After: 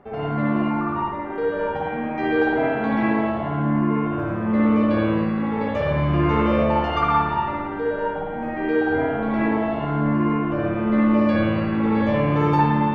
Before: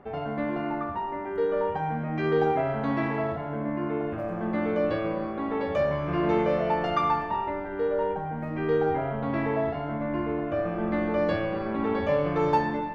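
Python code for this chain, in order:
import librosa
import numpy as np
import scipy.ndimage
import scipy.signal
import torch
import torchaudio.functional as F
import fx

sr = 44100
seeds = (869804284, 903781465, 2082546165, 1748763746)

y = fx.rev_spring(x, sr, rt60_s=1.4, pass_ms=(55,), chirp_ms=35, drr_db=-7.0)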